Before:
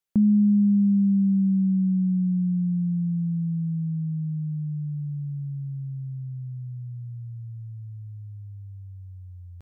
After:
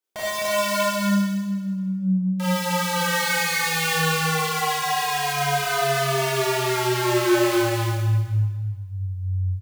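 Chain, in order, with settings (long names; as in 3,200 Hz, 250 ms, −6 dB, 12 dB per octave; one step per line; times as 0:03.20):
parametric band 180 Hz +3 dB 1.1 octaves
reversed playback
downward compressor 16 to 1, threshold −25 dBFS, peak gain reduction 12 dB
reversed playback
high-pass filter sweep 340 Hz → 66 Hz, 0:02.22–0:04.68
wrap-around overflow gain 29.5 dB
on a send: single-tap delay 258 ms −3 dB
on the sum: four-comb reverb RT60 1.4 s, combs from 25 ms, DRR −9.5 dB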